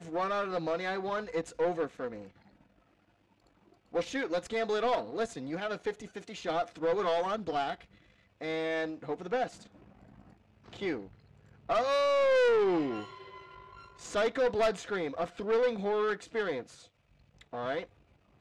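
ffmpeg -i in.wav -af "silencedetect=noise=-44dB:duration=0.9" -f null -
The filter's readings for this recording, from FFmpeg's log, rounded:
silence_start: 2.26
silence_end: 3.94 | silence_duration: 1.67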